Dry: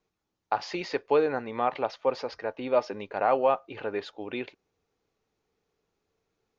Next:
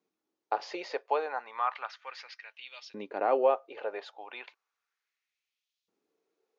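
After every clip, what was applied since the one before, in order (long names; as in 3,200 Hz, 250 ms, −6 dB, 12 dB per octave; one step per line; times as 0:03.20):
auto-filter high-pass saw up 0.34 Hz 240–3,800 Hz
level −5.5 dB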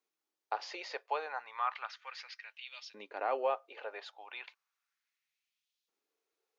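high-pass filter 1,300 Hz 6 dB per octave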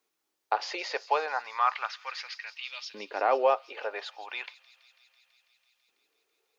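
delay with a high-pass on its return 165 ms, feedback 79%, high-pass 4,700 Hz, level −11 dB
level +8.5 dB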